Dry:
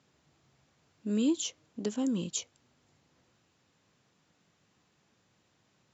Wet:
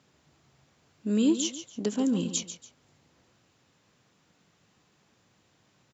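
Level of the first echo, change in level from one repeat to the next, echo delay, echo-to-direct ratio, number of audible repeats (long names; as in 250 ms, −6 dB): −11.0 dB, −10.0 dB, 142 ms, −10.5 dB, 2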